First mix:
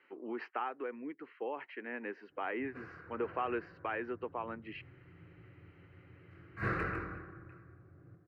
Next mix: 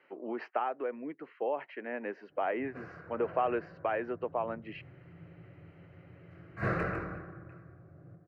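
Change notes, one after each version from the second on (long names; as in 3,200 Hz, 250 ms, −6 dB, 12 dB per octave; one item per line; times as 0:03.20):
master: add graphic EQ with 15 bands 160 Hz +8 dB, 630 Hz +12 dB, 6,300 Hz +4 dB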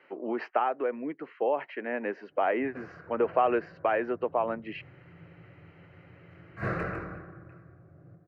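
speech +5.5 dB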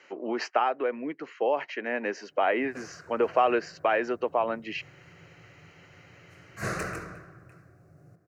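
background: send −11.0 dB
master: remove high-frequency loss of the air 470 metres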